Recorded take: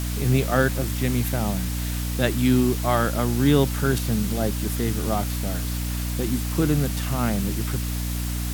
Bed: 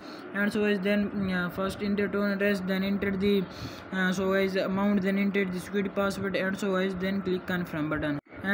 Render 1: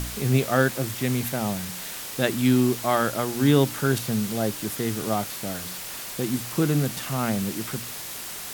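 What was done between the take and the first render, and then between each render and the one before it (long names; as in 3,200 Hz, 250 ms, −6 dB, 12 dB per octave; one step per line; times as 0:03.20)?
hum removal 60 Hz, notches 5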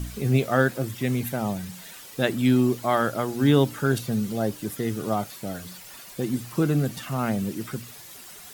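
broadband denoise 11 dB, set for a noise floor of −36 dBFS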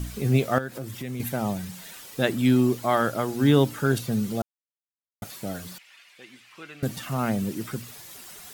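0:00.58–0:01.20: downward compressor 3 to 1, threshold −32 dBFS
0:04.42–0:05.22: silence
0:05.78–0:06.83: resonant band-pass 2,400 Hz, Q 2.1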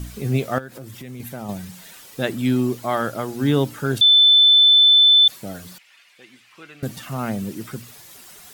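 0:00.59–0:01.49: downward compressor 1.5 to 1, threshold −36 dBFS
0:04.01–0:05.28: beep over 3,520 Hz −9 dBFS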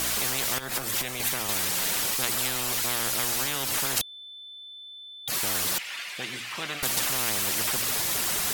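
downward compressor, threshold −18 dBFS, peak gain reduction 7 dB
every bin compressed towards the loudest bin 10 to 1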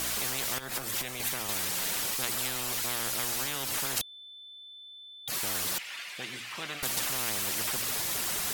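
level −4.5 dB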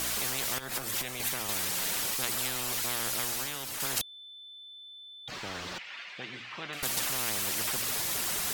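0:03.17–0:03.80: fade out, to −6.5 dB
0:05.27–0:06.73: high-frequency loss of the air 170 metres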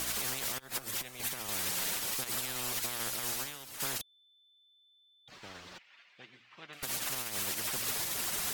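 brickwall limiter −22.5 dBFS, peak gain reduction 9 dB
expander for the loud parts 2.5 to 1, over −44 dBFS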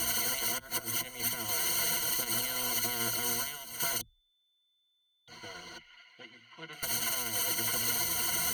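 EQ curve with evenly spaced ripples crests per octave 1.9, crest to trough 18 dB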